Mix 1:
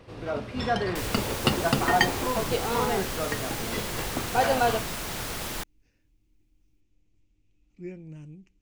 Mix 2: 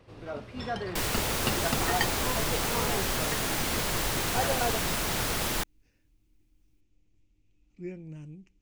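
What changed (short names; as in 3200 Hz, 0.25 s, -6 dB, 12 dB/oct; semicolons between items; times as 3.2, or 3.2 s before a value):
first sound -5.5 dB; second sound +4.0 dB; reverb: off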